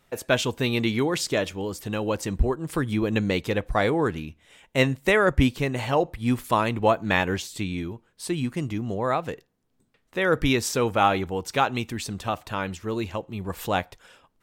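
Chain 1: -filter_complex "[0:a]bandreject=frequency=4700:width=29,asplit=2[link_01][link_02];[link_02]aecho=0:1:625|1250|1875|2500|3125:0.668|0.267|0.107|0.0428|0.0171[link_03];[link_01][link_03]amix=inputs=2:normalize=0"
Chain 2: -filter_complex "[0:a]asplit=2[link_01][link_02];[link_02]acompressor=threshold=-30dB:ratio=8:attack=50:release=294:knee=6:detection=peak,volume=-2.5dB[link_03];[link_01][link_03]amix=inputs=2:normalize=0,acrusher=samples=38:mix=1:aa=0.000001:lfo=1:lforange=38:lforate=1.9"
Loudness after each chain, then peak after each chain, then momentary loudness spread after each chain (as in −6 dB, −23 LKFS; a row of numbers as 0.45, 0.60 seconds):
−24.0, −23.5 LKFS; −4.5, −4.5 dBFS; 9, 8 LU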